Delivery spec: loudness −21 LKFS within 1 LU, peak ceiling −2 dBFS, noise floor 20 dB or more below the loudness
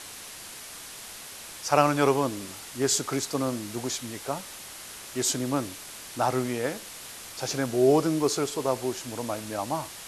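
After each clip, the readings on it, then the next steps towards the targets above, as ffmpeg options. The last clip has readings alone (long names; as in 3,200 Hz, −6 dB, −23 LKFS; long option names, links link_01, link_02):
background noise floor −43 dBFS; target noise floor −48 dBFS; integrated loudness −27.5 LKFS; sample peak −5.0 dBFS; target loudness −21.0 LKFS
→ -af "afftdn=noise_reduction=6:noise_floor=-43"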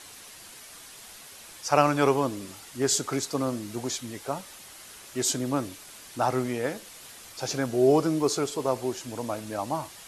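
background noise floor −47 dBFS; target noise floor −48 dBFS
→ -af "afftdn=noise_reduction=6:noise_floor=-47"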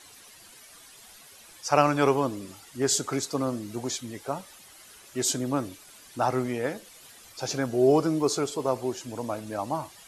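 background noise floor −51 dBFS; integrated loudness −27.5 LKFS; sample peak −5.0 dBFS; target loudness −21.0 LKFS
→ -af "volume=6.5dB,alimiter=limit=-2dB:level=0:latency=1"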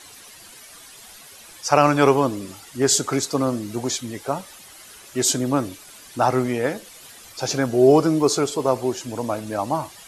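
integrated loudness −21.0 LKFS; sample peak −2.0 dBFS; background noise floor −45 dBFS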